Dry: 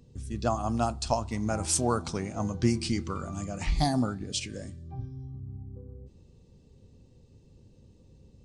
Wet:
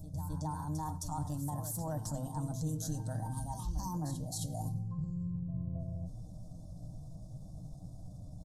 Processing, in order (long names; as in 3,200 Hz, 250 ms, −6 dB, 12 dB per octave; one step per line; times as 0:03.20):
brickwall limiter −23.5 dBFS, peak gain reduction 11.5 dB
mains-hum notches 50/100/150/200/250 Hz
slap from a distant wall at 17 metres, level −21 dB
pitch shifter +5 semitones
flat-topped bell 1,900 Hz −13.5 dB
phaser with its sweep stopped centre 960 Hz, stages 4
reversed playback
downward compressor 6 to 1, threshold −46 dBFS, peak gain reduction 17.5 dB
reversed playback
low-shelf EQ 130 Hz +8.5 dB
comb filter 6.5 ms, depth 45%
on a send: backwards echo 265 ms −9.5 dB
on the sum: level +6.5 dB